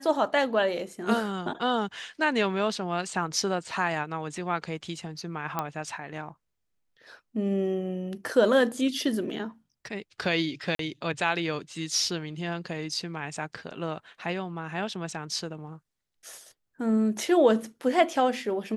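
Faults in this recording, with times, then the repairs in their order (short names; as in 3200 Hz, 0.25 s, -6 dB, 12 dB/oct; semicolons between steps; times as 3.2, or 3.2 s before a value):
5.59 pop -14 dBFS
10.75–10.79 gap 43 ms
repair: de-click; interpolate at 10.75, 43 ms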